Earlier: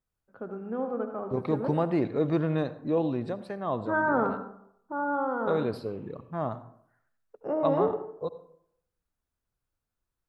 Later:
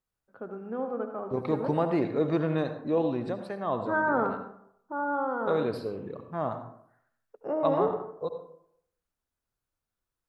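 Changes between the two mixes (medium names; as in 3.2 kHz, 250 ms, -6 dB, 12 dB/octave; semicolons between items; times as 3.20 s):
second voice: send +7.5 dB; master: add bass shelf 190 Hz -6 dB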